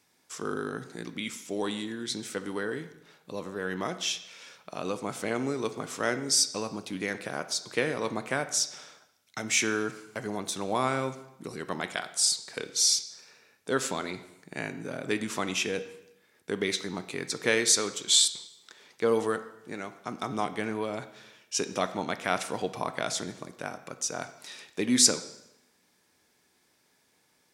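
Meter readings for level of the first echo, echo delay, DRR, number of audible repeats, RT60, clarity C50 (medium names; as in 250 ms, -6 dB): no echo, no echo, 10.0 dB, no echo, 0.85 s, 12.5 dB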